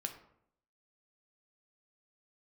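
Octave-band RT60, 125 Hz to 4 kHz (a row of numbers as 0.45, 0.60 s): 0.75, 0.80, 0.75, 0.65, 0.55, 0.40 s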